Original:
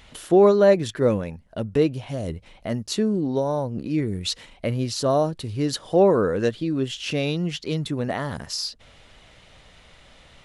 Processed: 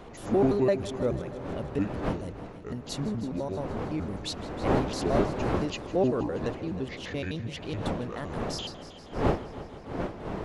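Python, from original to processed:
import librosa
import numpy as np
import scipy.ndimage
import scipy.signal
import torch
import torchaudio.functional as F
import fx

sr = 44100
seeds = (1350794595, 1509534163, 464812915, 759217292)

y = fx.pitch_trill(x, sr, semitones=-7.5, every_ms=85)
y = fx.dmg_wind(y, sr, seeds[0], corner_hz=560.0, level_db=-26.0)
y = fx.echo_heads(y, sr, ms=158, heads='first and second', feedback_pct=64, wet_db=-18.0)
y = y * librosa.db_to_amplitude(-8.5)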